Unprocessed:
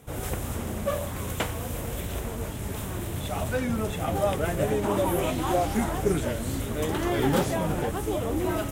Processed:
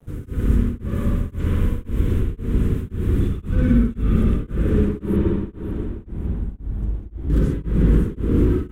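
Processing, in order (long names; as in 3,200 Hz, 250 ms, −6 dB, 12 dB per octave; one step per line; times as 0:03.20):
sub-octave generator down 2 octaves, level −4 dB
0:05.16–0:07.30: guitar amp tone stack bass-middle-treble 10-0-1
delay that swaps between a low-pass and a high-pass 276 ms, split 930 Hz, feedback 72%, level −14 dB
brickwall limiter −20.5 dBFS, peak gain reduction 9 dB
Butterworth band-reject 710 Hz, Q 0.9
tilt shelving filter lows +9.5 dB
dead-zone distortion −46 dBFS
spring reverb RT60 3.1 s, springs 55/59 ms, chirp 75 ms, DRR −6 dB
tremolo along a rectified sine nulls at 1.9 Hz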